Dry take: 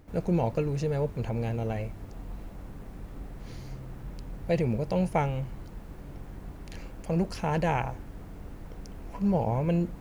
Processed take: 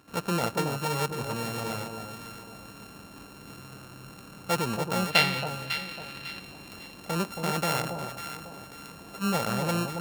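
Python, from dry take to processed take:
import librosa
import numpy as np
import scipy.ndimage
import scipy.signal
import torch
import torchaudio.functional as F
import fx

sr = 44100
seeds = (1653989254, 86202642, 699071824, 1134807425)

p1 = np.r_[np.sort(x[:len(x) // 32 * 32].reshape(-1, 32), axis=1).ravel(), x[len(x) // 32 * 32:]]
p2 = scipy.signal.sosfilt(scipy.signal.bessel(2, 200.0, 'highpass', norm='mag', fs=sr, output='sos'), p1)
p3 = fx.band_shelf(p2, sr, hz=2900.0, db=12.5, octaves=1.7, at=(5.1, 6.4))
y = p3 + fx.echo_alternate(p3, sr, ms=275, hz=1000.0, feedback_pct=56, wet_db=-5.0, dry=0)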